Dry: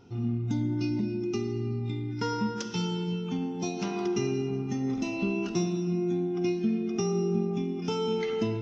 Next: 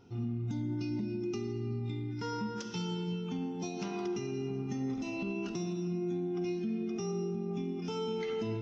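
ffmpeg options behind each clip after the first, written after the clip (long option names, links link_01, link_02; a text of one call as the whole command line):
ffmpeg -i in.wav -af "alimiter=limit=-23.5dB:level=0:latency=1:release=82,volume=-4dB" out.wav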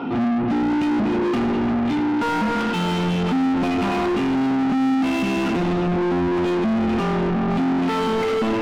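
ffmpeg -i in.wav -filter_complex "[0:a]highpass=frequency=160:width=0.5412,highpass=frequency=160:width=1.3066,equalizer=frequency=160:width_type=q:width=4:gain=3,equalizer=frequency=260:width_type=q:width=4:gain=9,equalizer=frequency=400:width_type=q:width=4:gain=-9,equalizer=frequency=1200:width_type=q:width=4:gain=3,equalizer=frequency=1800:width_type=q:width=4:gain=-9,lowpass=frequency=3100:width=0.5412,lowpass=frequency=3100:width=1.3066,asplit=2[link_01][link_02];[link_02]highpass=frequency=720:poles=1,volume=39dB,asoftclip=type=tanh:threshold=-21.5dB[link_03];[link_01][link_03]amix=inputs=2:normalize=0,lowpass=frequency=1500:poles=1,volume=-6dB,volume=7.5dB" out.wav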